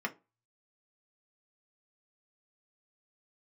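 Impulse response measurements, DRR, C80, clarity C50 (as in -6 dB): 1.5 dB, 28.0 dB, 20.0 dB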